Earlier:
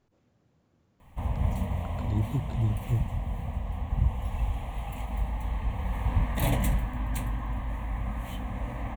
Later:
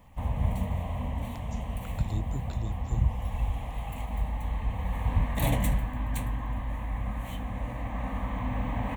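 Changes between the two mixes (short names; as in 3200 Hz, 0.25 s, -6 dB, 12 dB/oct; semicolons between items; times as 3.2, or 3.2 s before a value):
speech: add tilt +3 dB/oct; background: entry -1.00 s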